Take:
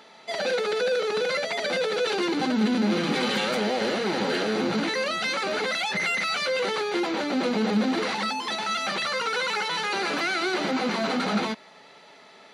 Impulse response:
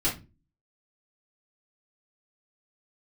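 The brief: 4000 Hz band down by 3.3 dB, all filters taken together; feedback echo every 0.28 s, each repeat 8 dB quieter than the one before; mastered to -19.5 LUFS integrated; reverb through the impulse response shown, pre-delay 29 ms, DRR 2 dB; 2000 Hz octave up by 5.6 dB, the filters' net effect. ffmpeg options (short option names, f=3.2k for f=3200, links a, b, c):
-filter_complex "[0:a]equalizer=f=2k:t=o:g=8.5,equalizer=f=4k:t=o:g=-7,aecho=1:1:280|560|840|1120|1400:0.398|0.159|0.0637|0.0255|0.0102,asplit=2[a][b];[1:a]atrim=start_sample=2205,adelay=29[c];[b][c]afir=irnorm=-1:irlink=0,volume=-11dB[d];[a][d]amix=inputs=2:normalize=0,volume=1dB"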